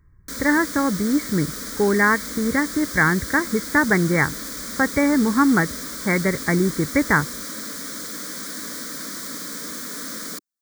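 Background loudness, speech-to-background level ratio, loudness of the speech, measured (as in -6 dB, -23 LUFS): -30.0 LUFS, 9.5 dB, -20.5 LUFS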